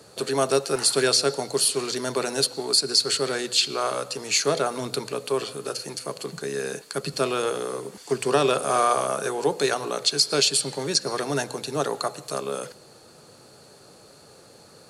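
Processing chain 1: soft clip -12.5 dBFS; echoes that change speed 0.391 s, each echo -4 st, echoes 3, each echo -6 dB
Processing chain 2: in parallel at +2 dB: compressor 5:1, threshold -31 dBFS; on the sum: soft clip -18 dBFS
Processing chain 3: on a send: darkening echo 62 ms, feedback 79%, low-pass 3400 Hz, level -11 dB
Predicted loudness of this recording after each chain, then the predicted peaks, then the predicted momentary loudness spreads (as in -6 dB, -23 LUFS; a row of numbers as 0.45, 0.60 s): -24.5, -25.0, -24.0 LUFS; -10.0, -18.0, -6.0 dBFS; 8, 20, 11 LU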